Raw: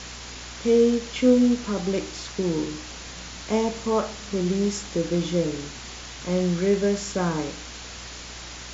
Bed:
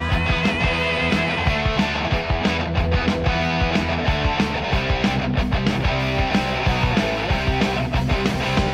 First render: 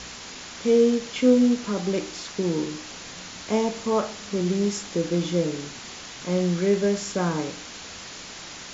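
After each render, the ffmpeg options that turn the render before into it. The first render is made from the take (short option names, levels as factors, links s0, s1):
-af "bandreject=f=60:t=h:w=4,bandreject=f=120:t=h:w=4"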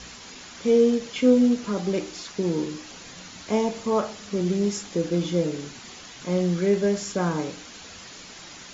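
-af "afftdn=nr=6:nf=-40"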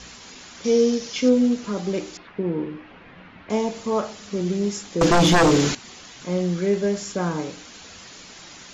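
-filter_complex "[0:a]asettb=1/sr,asplit=3[s0][s1][s2];[s0]atrim=end=0.644[s3];[s1]atrim=start=0.64:end=1.29,asetpts=PTS-STARTPTS,afade=t=in:d=0.004:c=qsin,afade=t=out:st=0.646:d=0.004:c=qsin,lowpass=f=5700:t=q:w=3.4[s4];[s2]atrim=start=1.286[s5];[s3][s4]acrossfade=d=0.004:c1=hsin:c2=qsin[s6];[s6][s5]acrossfade=d=0.004:c1=qsin:c2=hsin,asettb=1/sr,asplit=3[s7][s8][s9];[s7]atrim=end=2.174[s10];[s8]atrim=start=2.17:end=3.5,asetpts=PTS-STARTPTS,afade=t=in:d=0.004:c=qsin,afade=t=out:st=1.326:d=0.004:c=qsin,lowpass=f=2500:w=0.5412,lowpass=f=2500:w=1.3066[s11];[s9]atrim=start=3.496[s12];[s10][s11]acrossfade=d=0.004:c1=hsin:c2=qsin[s13];[s13][s12]acrossfade=d=0.004:c1=qsin:c2=hsin,asettb=1/sr,asplit=3[s14][s15][s16];[s14]atrim=end=5.014[s17];[s15]atrim=start=5.01:end=5.75,asetpts=PTS-STARTPTS,afade=t=in:d=0.004:c=qsin,afade=t=out:st=0.736:d=0.004:c=qsin,aeval=exprs='0.266*sin(PI/2*4.47*val(0)/0.266)':c=same[s18];[s16]atrim=start=5.746[s19];[s17][s18]acrossfade=d=0.004:c1=hsin:c2=qsin[s20];[s20][s19]acrossfade=d=0.004:c1=qsin:c2=hsin"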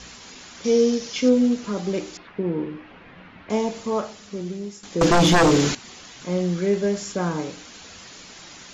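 -filter_complex "[0:a]asplit=2[s0][s1];[s0]atrim=end=4.83,asetpts=PTS-STARTPTS,afade=t=out:st=3.75:d=1.08:silence=0.223872[s2];[s1]atrim=start=4.83,asetpts=PTS-STARTPTS,afade=t=in:d=0.004:c=hsin:silence=0.223872[s3];[s2][s3]concat=n=2:v=0:a=1"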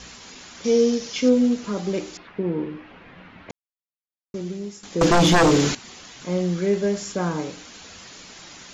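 -filter_complex "[0:a]asplit=3[s0][s1][s2];[s0]atrim=end=3.51,asetpts=PTS-STARTPTS,afade=t=out:st=3.506:d=0.004:c=hsin[s3];[s1]atrim=start=3.51:end=4.34,asetpts=PTS-STARTPTS,volume=0[s4];[s2]atrim=start=4.34,asetpts=PTS-STARTPTS,afade=t=in:d=0.004:c=hsin[s5];[s3][s4][s5]concat=n=3:v=0:a=1"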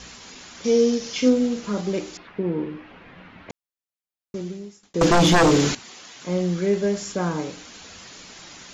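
-filter_complex "[0:a]asettb=1/sr,asplit=3[s0][s1][s2];[s0]atrim=end=1.004[s3];[s1]atrim=start=1:end=1.81,asetpts=PTS-STARTPTS,afade=t=in:d=0.004:c=qsin,afade=t=out:st=0.806:d=0.004:c=qsin,asplit=2[s4][s5];[s5]adelay=39,volume=0.422[s6];[s4][s6]amix=inputs=2:normalize=0,atrim=end_sample=35721[s7];[s2]atrim=start=1.806[s8];[s3][s7]acrossfade=d=0.004:c1=hsin:c2=qsin[s9];[s9][s8]acrossfade=d=0.004:c1=qsin:c2=hsin,asettb=1/sr,asplit=3[s10][s11][s12];[s10]atrim=end=5.834[s13];[s11]atrim=start=5.83:end=6.26,asetpts=PTS-STARTPTS,afade=t=in:d=0.004:c=qsin,afade=t=out:st=0.426:d=0.004:c=qsin,highpass=f=320:p=1[s14];[s12]atrim=start=6.256[s15];[s13][s14]acrossfade=d=0.004:c1=hsin:c2=qsin[s16];[s16][s15]acrossfade=d=0.004:c1=qsin:c2=hsin,asplit=2[s17][s18];[s17]atrim=end=4.94,asetpts=PTS-STARTPTS,afade=t=out:st=4.4:d=0.54[s19];[s18]atrim=start=4.94,asetpts=PTS-STARTPTS,afade=t=in:d=0.004:c=hsin[s20];[s19][s20]concat=n=2:v=0:a=1"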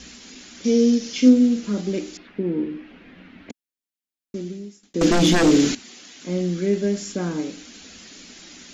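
-af "equalizer=f=125:t=o:w=1:g=-10,equalizer=f=250:t=o:w=1:g=9,equalizer=f=500:t=o:w=1:g=-3,equalizer=f=1000:t=o:w=1:g=-9"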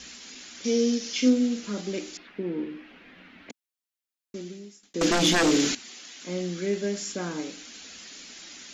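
-af "lowshelf=f=430:g=-10.5"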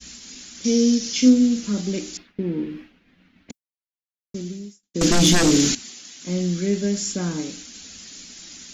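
-af "agate=range=0.0224:threshold=0.00891:ratio=3:detection=peak,bass=f=250:g=14,treble=f=4000:g=9"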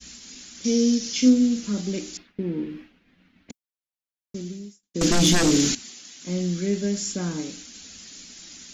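-af "volume=0.75"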